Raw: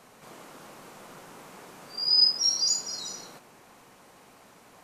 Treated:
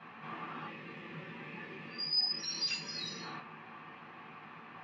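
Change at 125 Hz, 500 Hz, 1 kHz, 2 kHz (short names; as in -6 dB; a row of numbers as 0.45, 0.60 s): n/a, -3.0 dB, +1.5 dB, +6.5 dB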